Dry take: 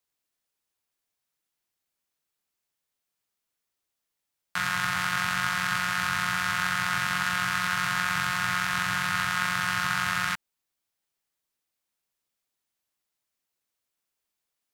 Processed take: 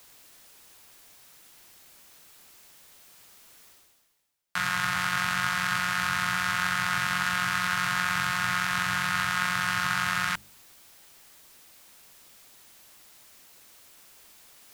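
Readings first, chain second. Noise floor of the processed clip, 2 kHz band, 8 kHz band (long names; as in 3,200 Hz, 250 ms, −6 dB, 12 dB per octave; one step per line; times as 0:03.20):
−58 dBFS, 0.0 dB, 0.0 dB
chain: reversed playback
upward compression, threshold −30 dBFS
reversed playback
hum removal 50.57 Hz, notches 10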